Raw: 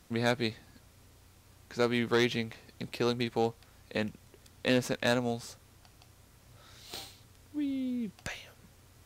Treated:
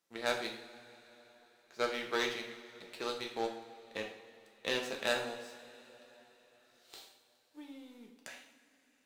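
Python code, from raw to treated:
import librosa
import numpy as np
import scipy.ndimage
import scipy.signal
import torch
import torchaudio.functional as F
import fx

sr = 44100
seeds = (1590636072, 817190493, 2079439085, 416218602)

y = scipy.signal.sosfilt(scipy.signal.butter(2, 370.0, 'highpass', fs=sr, output='sos'), x)
y = fx.power_curve(y, sr, exponent=1.4)
y = fx.rev_double_slope(y, sr, seeds[0], early_s=0.6, late_s=4.3, knee_db=-18, drr_db=1.0)
y = y * librosa.db_to_amplitude(-2.5)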